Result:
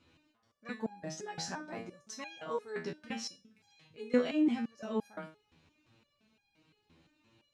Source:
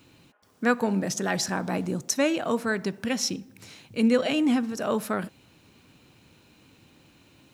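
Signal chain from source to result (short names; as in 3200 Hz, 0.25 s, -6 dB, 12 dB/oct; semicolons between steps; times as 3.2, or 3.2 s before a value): LPF 5600 Hz 12 dB/oct; stepped resonator 5.8 Hz 82–810 Hz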